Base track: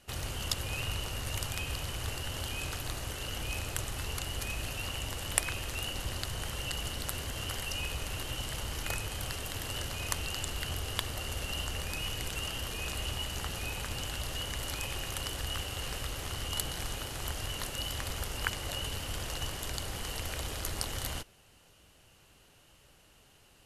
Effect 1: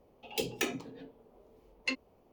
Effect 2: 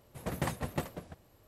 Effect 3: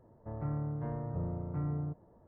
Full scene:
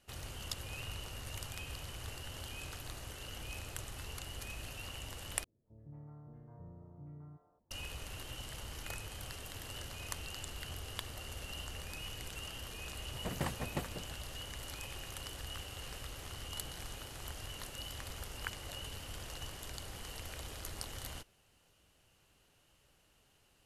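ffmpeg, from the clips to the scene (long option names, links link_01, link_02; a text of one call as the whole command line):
ffmpeg -i bed.wav -i cue0.wav -i cue1.wav -i cue2.wav -filter_complex "[0:a]volume=-8.5dB[link_01];[3:a]acrossover=split=530|1800[link_02][link_03][link_04];[link_04]adelay=80[link_05];[link_03]adelay=220[link_06];[link_02][link_06][link_05]amix=inputs=3:normalize=0[link_07];[link_01]asplit=2[link_08][link_09];[link_08]atrim=end=5.444[link_10];[link_07]atrim=end=2.27,asetpts=PTS-STARTPTS,volume=-16dB[link_11];[link_09]atrim=start=7.706[link_12];[2:a]atrim=end=1.47,asetpts=PTS-STARTPTS,volume=-4dB,afade=type=in:duration=0.004:curve=hsin,afade=type=out:start_time=1.466:duration=0.004:curve=hsin,adelay=12990[link_13];[link_10][link_11]acrossfade=duration=0.004:curve1=hsin:curve2=hsin[link_14];[link_14][link_12]acrossfade=duration=0.004:curve1=hsin:curve2=hsin[link_15];[link_15][link_13]amix=inputs=2:normalize=0" out.wav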